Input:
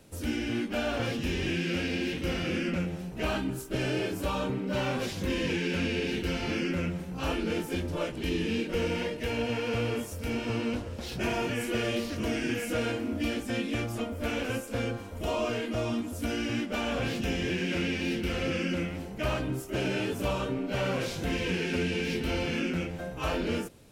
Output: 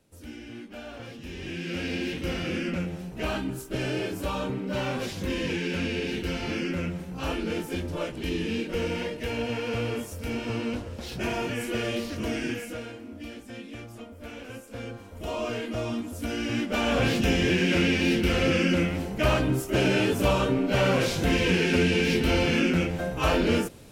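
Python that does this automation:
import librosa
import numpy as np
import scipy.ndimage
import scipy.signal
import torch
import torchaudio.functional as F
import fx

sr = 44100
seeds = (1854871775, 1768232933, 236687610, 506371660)

y = fx.gain(x, sr, db=fx.line((1.17, -10.5), (1.9, 0.5), (12.47, 0.5), (12.89, -9.5), (14.43, -9.5), (15.53, 0.0), (16.28, 0.0), (17.0, 7.0)))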